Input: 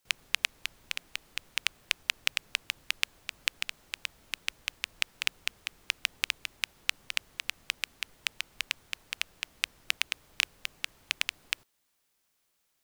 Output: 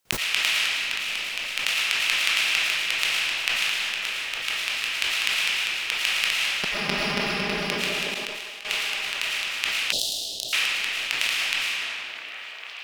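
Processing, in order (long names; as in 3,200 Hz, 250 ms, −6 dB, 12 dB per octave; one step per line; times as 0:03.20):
0:06.50–0:07.62: lower of the sound and its delayed copy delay 4.9 ms
low-shelf EQ 130 Hz −8.5 dB
echo through a band-pass that steps 447 ms, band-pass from 340 Hz, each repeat 0.7 octaves, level −2.5 dB
comb and all-pass reverb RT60 2.5 s, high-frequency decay 0.8×, pre-delay 70 ms, DRR −8 dB
0:08.14–0:08.65: output level in coarse steps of 23 dB
0:09.92–0:10.53: elliptic band-stop filter 670–3,800 Hz, stop band 40 dB
dynamic equaliser 170 Hz, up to +5 dB, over −55 dBFS, Q 1.9
level that may fall only so fast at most 23 dB per second
level +1 dB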